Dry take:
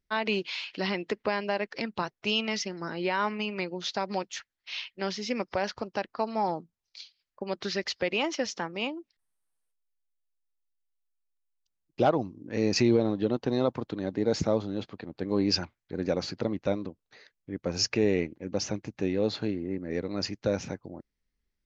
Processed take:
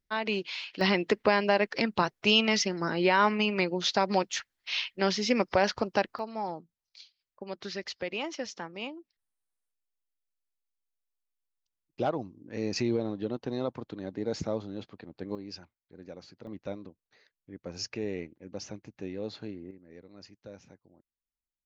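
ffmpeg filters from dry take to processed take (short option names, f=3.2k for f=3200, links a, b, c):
-af "asetnsamples=n=441:p=0,asendcmd='0.81 volume volume 5dB;6.19 volume volume -6dB;15.35 volume volume -17dB;16.47 volume volume -9.5dB;19.71 volume volume -19dB',volume=-2dB"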